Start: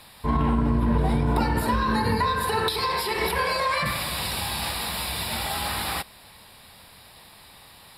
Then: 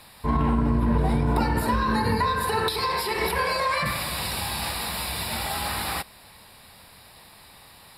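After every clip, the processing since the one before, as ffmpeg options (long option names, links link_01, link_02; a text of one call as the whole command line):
ffmpeg -i in.wav -af "equalizer=frequency=3300:width=4:gain=-3.5" out.wav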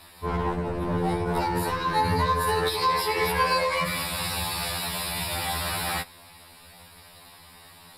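ffmpeg -i in.wav -af "aeval=exprs='clip(val(0),-1,0.112)':channel_layout=same,afftfilt=real='re*2*eq(mod(b,4),0)':imag='im*2*eq(mod(b,4),0)':win_size=2048:overlap=0.75,volume=2.5dB" out.wav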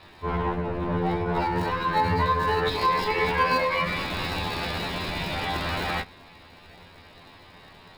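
ffmpeg -i in.wav -filter_complex "[0:a]acrossover=split=190|3600[link_01][link_02][link_03];[link_02]crystalizer=i=2.5:c=0[link_04];[link_03]acrusher=samples=36:mix=1:aa=0.000001[link_05];[link_01][link_04][link_05]amix=inputs=3:normalize=0" out.wav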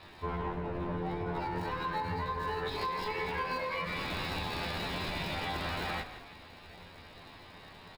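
ffmpeg -i in.wav -filter_complex "[0:a]acompressor=threshold=-30dB:ratio=6,asplit=5[link_01][link_02][link_03][link_04][link_05];[link_02]adelay=167,afreqshift=-38,volume=-12dB[link_06];[link_03]adelay=334,afreqshift=-76,volume=-20.9dB[link_07];[link_04]adelay=501,afreqshift=-114,volume=-29.7dB[link_08];[link_05]adelay=668,afreqshift=-152,volume=-38.6dB[link_09];[link_01][link_06][link_07][link_08][link_09]amix=inputs=5:normalize=0,volume=-2.5dB" out.wav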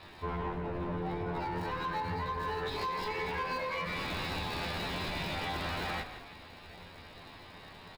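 ffmpeg -i in.wav -af "asoftclip=type=tanh:threshold=-28dB,volume=1dB" out.wav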